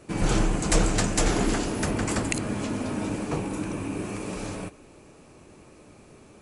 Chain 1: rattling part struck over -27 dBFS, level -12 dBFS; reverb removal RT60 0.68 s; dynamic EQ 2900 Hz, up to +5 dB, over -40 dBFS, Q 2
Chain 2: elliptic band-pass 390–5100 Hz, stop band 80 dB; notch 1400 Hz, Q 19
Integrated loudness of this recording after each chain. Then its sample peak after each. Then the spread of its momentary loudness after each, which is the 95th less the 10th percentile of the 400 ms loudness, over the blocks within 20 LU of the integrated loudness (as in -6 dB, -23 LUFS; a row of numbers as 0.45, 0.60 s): -25.5, -32.5 LUFS; -4.5, -9.0 dBFS; 13, 9 LU